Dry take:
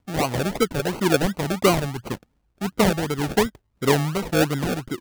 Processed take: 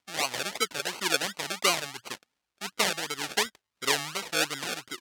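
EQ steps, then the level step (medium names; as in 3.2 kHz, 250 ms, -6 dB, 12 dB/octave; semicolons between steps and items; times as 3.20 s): band-pass filter 4.8 kHz, Q 0.53; +2.5 dB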